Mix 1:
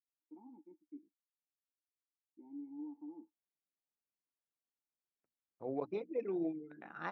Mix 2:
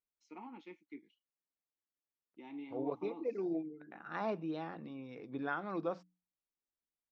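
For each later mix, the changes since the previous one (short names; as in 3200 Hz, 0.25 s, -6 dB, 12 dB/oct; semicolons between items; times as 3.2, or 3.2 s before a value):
first voice: remove vocal tract filter u; second voice: entry -2.90 s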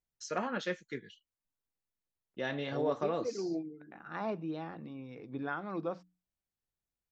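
first voice: remove vowel filter u; master: add bell 87 Hz +7.5 dB 1.7 oct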